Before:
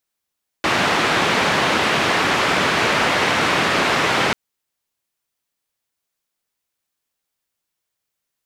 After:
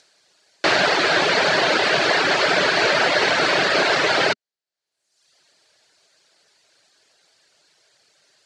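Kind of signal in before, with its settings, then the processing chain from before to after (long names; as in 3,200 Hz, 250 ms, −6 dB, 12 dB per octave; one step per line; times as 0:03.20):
band-limited noise 120–2,200 Hz, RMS −18 dBFS 3.69 s
reverb reduction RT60 0.8 s
upward compression, threshold −39 dBFS
loudspeaker in its box 150–7,700 Hz, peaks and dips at 230 Hz −8 dB, 400 Hz +4 dB, 620 Hz +7 dB, 1,100 Hz −4 dB, 1,600 Hz +5 dB, 4,400 Hz +8 dB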